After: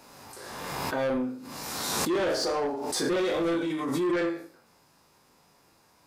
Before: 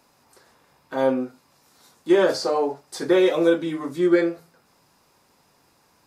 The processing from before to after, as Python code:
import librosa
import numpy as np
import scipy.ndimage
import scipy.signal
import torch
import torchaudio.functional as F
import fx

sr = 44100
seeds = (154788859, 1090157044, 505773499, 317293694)

y = fx.spec_trails(x, sr, decay_s=0.45)
y = fx.room_flutter(y, sr, wall_m=6.7, rt60_s=0.29)
y = 10.0 ** (-20.0 / 20.0) * np.tanh(y / 10.0 ** (-20.0 / 20.0))
y = fx.pre_swell(y, sr, db_per_s=27.0)
y = y * librosa.db_to_amplitude(-3.5)